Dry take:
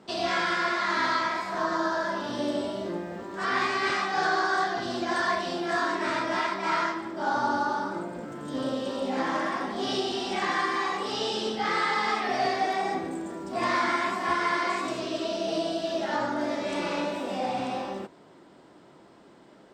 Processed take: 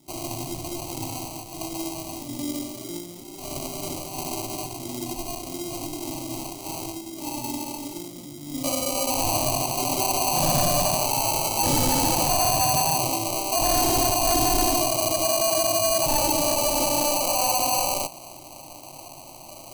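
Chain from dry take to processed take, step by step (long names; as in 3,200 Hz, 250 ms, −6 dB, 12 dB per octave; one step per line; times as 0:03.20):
floating-point word with a short mantissa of 2 bits
flat-topped bell 1,100 Hz −9 dB 2.6 octaves, from 0:08.63 +8.5 dB, from 0:10.00 +15 dB
decimation without filtering 25×
phaser with its sweep stopped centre 300 Hz, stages 8
soft clipping −11 dBFS, distortion −14 dB
bass and treble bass +4 dB, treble +10 dB
boost into a limiter +7.5 dB
level −7 dB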